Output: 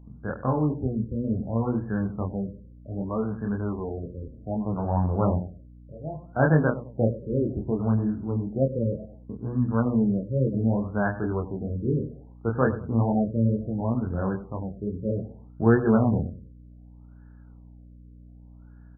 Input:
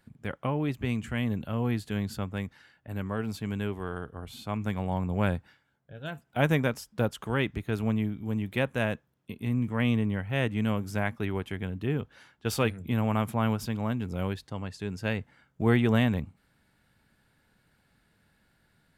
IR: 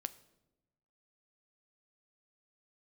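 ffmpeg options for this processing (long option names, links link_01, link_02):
-filter_complex "[0:a]bandreject=frequency=60:width_type=h:width=6,bandreject=frequency=120:width_type=h:width=6,bandreject=frequency=180:width_type=h:width=6,bandreject=frequency=240:width_type=h:width=6,asplit=2[link_01][link_02];[link_02]adelay=98,lowpass=frequency=1700:poles=1,volume=-13dB,asplit=2[link_03][link_04];[link_04]adelay=98,lowpass=frequency=1700:poles=1,volume=0.32,asplit=2[link_05][link_06];[link_06]adelay=98,lowpass=frequency=1700:poles=1,volume=0.32[link_07];[link_01][link_03][link_05][link_07]amix=inputs=4:normalize=0,flanger=delay=22.5:depth=3.8:speed=2.2,aeval=exprs='val(0)+0.002*(sin(2*PI*60*n/s)+sin(2*PI*2*60*n/s)/2+sin(2*PI*3*60*n/s)/3+sin(2*PI*4*60*n/s)/4+sin(2*PI*5*60*n/s)/5)':channel_layout=same,afftfilt=real='re*lt(b*sr/1024,580*pow(1800/580,0.5+0.5*sin(2*PI*0.65*pts/sr)))':imag='im*lt(b*sr/1024,580*pow(1800/580,0.5+0.5*sin(2*PI*0.65*pts/sr)))':win_size=1024:overlap=0.75,volume=7.5dB"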